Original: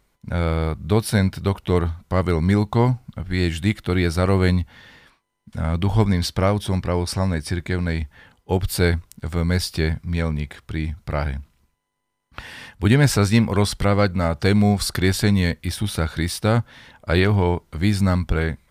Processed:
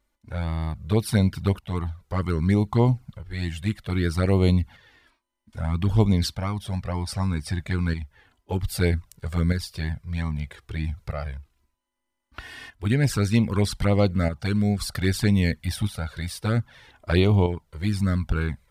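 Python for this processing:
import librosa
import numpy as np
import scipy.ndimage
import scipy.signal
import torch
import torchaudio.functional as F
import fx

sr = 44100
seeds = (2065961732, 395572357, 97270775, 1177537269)

y = fx.tremolo_shape(x, sr, shape='saw_up', hz=0.63, depth_pct=55)
y = fx.env_flanger(y, sr, rest_ms=3.4, full_db=-14.0)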